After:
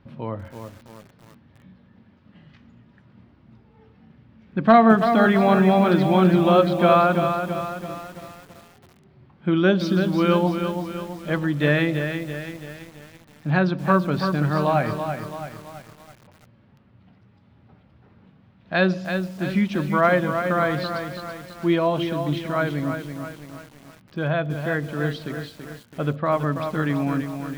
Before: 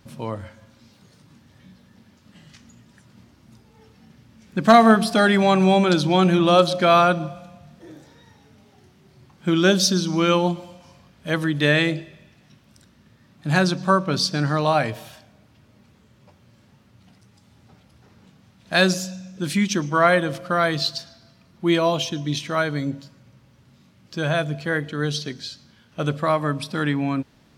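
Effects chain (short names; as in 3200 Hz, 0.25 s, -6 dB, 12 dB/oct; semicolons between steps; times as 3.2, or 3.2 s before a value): air absorption 380 m; lo-fi delay 0.332 s, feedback 55%, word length 7-bit, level -7 dB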